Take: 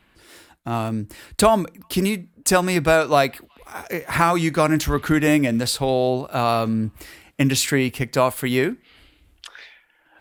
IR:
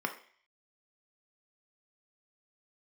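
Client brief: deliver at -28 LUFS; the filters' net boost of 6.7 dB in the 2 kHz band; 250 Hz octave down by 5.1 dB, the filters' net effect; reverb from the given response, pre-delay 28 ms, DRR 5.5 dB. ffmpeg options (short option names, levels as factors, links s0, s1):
-filter_complex "[0:a]equalizer=f=250:t=o:g=-7,equalizer=f=2000:t=o:g=8.5,asplit=2[s0][s1];[1:a]atrim=start_sample=2205,adelay=28[s2];[s1][s2]afir=irnorm=-1:irlink=0,volume=0.266[s3];[s0][s3]amix=inputs=2:normalize=0,volume=0.335"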